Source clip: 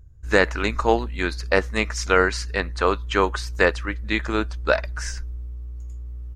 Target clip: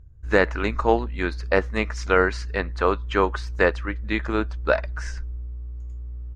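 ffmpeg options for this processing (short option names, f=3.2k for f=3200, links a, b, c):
-af "aemphasis=mode=reproduction:type=75kf"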